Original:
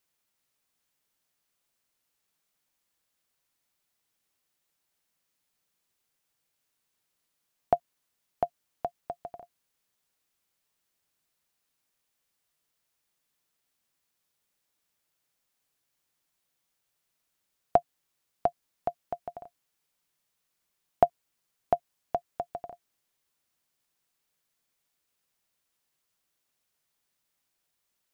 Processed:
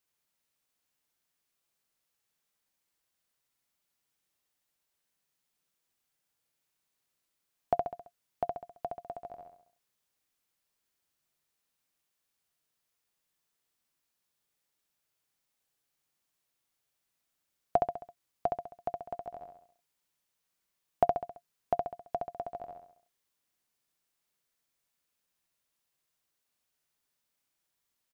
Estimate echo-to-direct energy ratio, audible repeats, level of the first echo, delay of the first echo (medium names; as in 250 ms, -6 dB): -3.0 dB, 5, -4.0 dB, 67 ms